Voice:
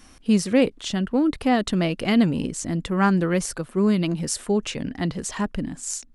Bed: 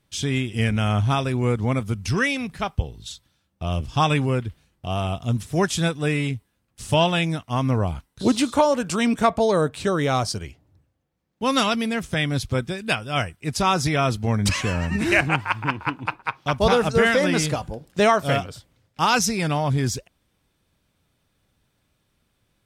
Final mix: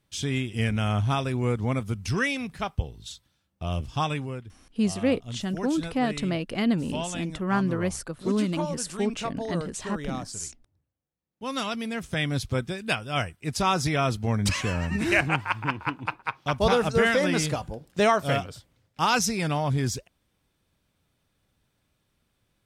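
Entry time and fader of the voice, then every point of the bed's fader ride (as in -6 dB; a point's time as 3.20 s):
4.50 s, -5.5 dB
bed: 3.84 s -4 dB
4.43 s -14 dB
11.14 s -14 dB
12.25 s -3.5 dB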